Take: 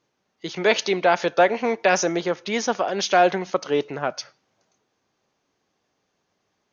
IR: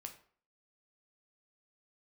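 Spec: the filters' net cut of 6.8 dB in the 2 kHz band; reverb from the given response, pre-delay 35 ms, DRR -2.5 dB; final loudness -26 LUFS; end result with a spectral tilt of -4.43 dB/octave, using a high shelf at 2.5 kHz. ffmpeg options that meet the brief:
-filter_complex "[0:a]equalizer=f=2000:t=o:g=-7,highshelf=f=2500:g=-5,asplit=2[s0][s1];[1:a]atrim=start_sample=2205,adelay=35[s2];[s1][s2]afir=irnorm=-1:irlink=0,volume=2.24[s3];[s0][s3]amix=inputs=2:normalize=0,volume=0.447"

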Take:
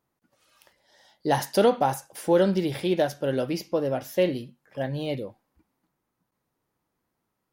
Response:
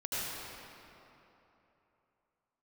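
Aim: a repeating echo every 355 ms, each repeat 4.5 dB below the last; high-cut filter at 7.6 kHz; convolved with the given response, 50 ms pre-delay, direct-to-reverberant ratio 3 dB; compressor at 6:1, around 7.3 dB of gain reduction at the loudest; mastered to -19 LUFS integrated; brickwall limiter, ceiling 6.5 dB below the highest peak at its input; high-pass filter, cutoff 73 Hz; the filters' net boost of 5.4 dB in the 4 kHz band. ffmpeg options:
-filter_complex "[0:a]highpass=73,lowpass=7600,equalizer=f=4000:t=o:g=7.5,acompressor=threshold=0.0708:ratio=6,alimiter=limit=0.106:level=0:latency=1,aecho=1:1:355|710|1065|1420|1775|2130|2485|2840|3195:0.596|0.357|0.214|0.129|0.0772|0.0463|0.0278|0.0167|0.01,asplit=2[s0][s1];[1:a]atrim=start_sample=2205,adelay=50[s2];[s1][s2]afir=irnorm=-1:irlink=0,volume=0.355[s3];[s0][s3]amix=inputs=2:normalize=0,volume=2.99"

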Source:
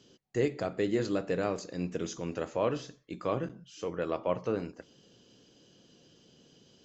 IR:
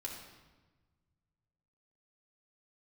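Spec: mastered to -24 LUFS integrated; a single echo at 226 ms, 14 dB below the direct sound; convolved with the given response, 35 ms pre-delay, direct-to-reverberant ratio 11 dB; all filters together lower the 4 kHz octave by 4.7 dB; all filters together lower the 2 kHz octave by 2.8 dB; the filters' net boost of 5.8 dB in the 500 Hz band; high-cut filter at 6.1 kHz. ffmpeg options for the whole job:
-filter_complex "[0:a]lowpass=6100,equalizer=f=500:t=o:g=7,equalizer=f=2000:t=o:g=-3,equalizer=f=4000:t=o:g=-4.5,aecho=1:1:226:0.2,asplit=2[s0][s1];[1:a]atrim=start_sample=2205,adelay=35[s2];[s1][s2]afir=irnorm=-1:irlink=0,volume=0.316[s3];[s0][s3]amix=inputs=2:normalize=0,volume=1.78"

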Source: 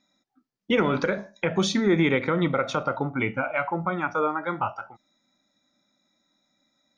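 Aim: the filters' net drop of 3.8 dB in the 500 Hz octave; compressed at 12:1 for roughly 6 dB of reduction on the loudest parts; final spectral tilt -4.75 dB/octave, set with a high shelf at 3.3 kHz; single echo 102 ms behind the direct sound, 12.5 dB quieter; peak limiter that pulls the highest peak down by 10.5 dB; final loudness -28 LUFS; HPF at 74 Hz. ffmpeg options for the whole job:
-af "highpass=74,equalizer=f=500:t=o:g=-5,highshelf=f=3300:g=8,acompressor=threshold=0.0631:ratio=12,alimiter=limit=0.0708:level=0:latency=1,aecho=1:1:102:0.237,volume=1.88"

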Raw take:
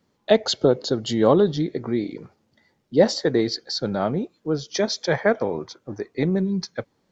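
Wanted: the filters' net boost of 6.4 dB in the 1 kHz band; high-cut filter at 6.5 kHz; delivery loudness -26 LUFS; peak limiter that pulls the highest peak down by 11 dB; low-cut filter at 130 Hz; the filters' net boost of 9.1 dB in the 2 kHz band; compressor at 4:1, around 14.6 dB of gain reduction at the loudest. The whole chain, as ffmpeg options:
-af "highpass=130,lowpass=6500,equalizer=f=1000:t=o:g=6.5,equalizer=f=2000:t=o:g=9,acompressor=threshold=0.0501:ratio=4,volume=2.24,alimiter=limit=0.188:level=0:latency=1"

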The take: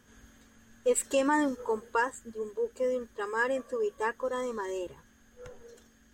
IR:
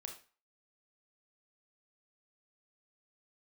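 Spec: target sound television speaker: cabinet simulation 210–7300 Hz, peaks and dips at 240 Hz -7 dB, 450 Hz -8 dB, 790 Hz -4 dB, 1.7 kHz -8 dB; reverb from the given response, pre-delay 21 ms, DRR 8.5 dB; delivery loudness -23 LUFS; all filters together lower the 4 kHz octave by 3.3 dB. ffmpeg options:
-filter_complex "[0:a]equalizer=f=4000:t=o:g=-4.5,asplit=2[s0][s1];[1:a]atrim=start_sample=2205,adelay=21[s2];[s1][s2]afir=irnorm=-1:irlink=0,volume=0.562[s3];[s0][s3]amix=inputs=2:normalize=0,highpass=f=210:w=0.5412,highpass=f=210:w=1.3066,equalizer=f=240:t=q:w=4:g=-7,equalizer=f=450:t=q:w=4:g=-8,equalizer=f=790:t=q:w=4:g=-4,equalizer=f=1700:t=q:w=4:g=-8,lowpass=f=7300:w=0.5412,lowpass=f=7300:w=1.3066,volume=4.22"

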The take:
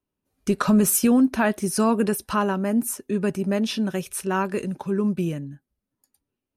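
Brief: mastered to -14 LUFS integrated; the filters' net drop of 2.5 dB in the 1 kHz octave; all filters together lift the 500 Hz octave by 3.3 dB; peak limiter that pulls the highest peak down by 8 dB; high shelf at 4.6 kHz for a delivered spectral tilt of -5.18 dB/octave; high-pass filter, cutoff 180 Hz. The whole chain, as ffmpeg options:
-af "highpass=180,equalizer=f=500:t=o:g=5.5,equalizer=f=1000:t=o:g=-4.5,highshelf=f=4600:g=-5,volume=4.22,alimiter=limit=0.668:level=0:latency=1"

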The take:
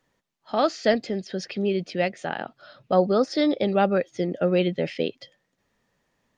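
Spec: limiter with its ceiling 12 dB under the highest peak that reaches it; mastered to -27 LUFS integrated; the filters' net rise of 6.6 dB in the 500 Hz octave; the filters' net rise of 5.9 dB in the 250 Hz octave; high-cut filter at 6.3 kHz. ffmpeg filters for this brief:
-af "lowpass=6300,equalizer=f=250:t=o:g=6,equalizer=f=500:t=o:g=6.5,volume=0.668,alimiter=limit=0.15:level=0:latency=1"

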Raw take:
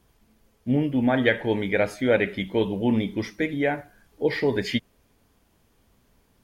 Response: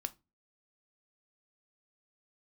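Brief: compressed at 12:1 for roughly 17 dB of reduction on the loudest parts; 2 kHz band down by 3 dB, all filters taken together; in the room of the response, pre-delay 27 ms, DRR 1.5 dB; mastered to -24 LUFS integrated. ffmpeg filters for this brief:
-filter_complex "[0:a]equalizer=f=2000:t=o:g=-3.5,acompressor=threshold=0.02:ratio=12,asplit=2[s0][s1];[1:a]atrim=start_sample=2205,adelay=27[s2];[s1][s2]afir=irnorm=-1:irlink=0,volume=0.944[s3];[s0][s3]amix=inputs=2:normalize=0,volume=4.47"

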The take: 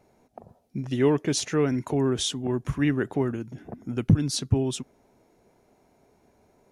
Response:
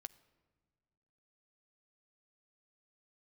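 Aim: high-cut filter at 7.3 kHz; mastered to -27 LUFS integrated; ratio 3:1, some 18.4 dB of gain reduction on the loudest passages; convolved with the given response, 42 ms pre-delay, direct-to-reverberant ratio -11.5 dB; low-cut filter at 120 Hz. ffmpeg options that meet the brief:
-filter_complex "[0:a]highpass=120,lowpass=7300,acompressor=threshold=0.00891:ratio=3,asplit=2[s0][s1];[1:a]atrim=start_sample=2205,adelay=42[s2];[s1][s2]afir=irnorm=-1:irlink=0,volume=7.5[s3];[s0][s3]amix=inputs=2:normalize=0,volume=1.26"

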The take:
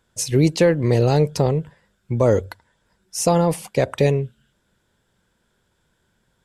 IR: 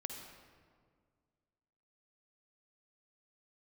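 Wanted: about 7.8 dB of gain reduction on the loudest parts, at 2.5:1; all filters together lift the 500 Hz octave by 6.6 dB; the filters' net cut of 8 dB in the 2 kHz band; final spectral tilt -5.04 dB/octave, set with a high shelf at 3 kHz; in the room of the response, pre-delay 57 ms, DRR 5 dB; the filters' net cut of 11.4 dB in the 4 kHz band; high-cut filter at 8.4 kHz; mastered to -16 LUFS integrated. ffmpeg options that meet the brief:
-filter_complex "[0:a]lowpass=8400,equalizer=f=500:t=o:g=8,equalizer=f=2000:t=o:g=-6.5,highshelf=f=3000:g=-5.5,equalizer=f=4000:t=o:g=-8.5,acompressor=threshold=0.126:ratio=2.5,asplit=2[s0][s1];[1:a]atrim=start_sample=2205,adelay=57[s2];[s1][s2]afir=irnorm=-1:irlink=0,volume=0.668[s3];[s0][s3]amix=inputs=2:normalize=0,volume=1.78"

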